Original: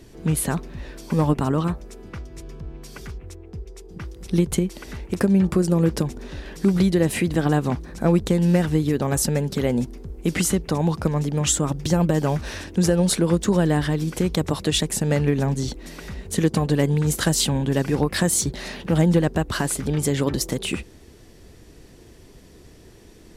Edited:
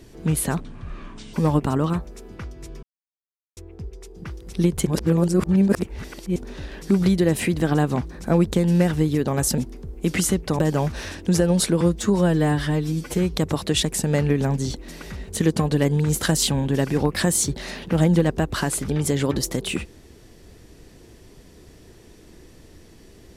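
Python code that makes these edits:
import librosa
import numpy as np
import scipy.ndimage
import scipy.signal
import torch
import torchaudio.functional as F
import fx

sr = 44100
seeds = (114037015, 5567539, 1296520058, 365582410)

y = fx.edit(x, sr, fx.speed_span(start_s=0.6, length_s=0.48, speed=0.65),
    fx.silence(start_s=2.57, length_s=0.74),
    fx.reverse_span(start_s=4.6, length_s=1.5),
    fx.cut(start_s=9.32, length_s=0.47),
    fx.cut(start_s=10.8, length_s=1.28),
    fx.stretch_span(start_s=13.3, length_s=1.03, factor=1.5), tone=tone)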